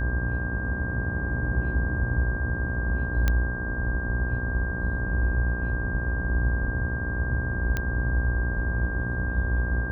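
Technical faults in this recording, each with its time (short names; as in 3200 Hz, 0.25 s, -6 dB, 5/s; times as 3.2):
buzz 60 Hz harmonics 20 -31 dBFS
tone 1600 Hz -32 dBFS
3.28 pop -10 dBFS
7.77 pop -14 dBFS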